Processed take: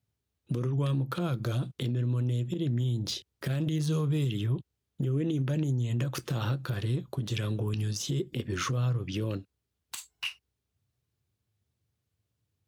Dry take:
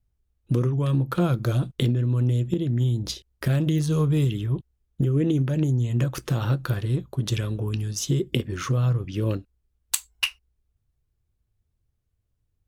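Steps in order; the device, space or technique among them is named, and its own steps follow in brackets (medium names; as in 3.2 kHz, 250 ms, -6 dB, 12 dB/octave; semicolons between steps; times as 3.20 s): broadcast voice chain (high-pass 92 Hz 24 dB/octave; de-esser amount 65%; compression, threshold -25 dBFS, peak gain reduction 8 dB; peaking EQ 3.9 kHz +4 dB 1.6 oct; peak limiter -21.5 dBFS, peak gain reduction 11.5 dB)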